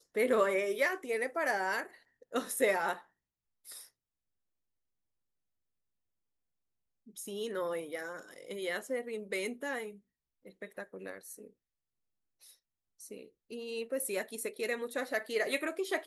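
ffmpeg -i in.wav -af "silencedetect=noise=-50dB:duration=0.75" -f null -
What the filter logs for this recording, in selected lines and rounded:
silence_start: 3.87
silence_end: 7.07 | silence_duration: 3.20
silence_start: 11.48
silence_end: 12.43 | silence_duration: 0.95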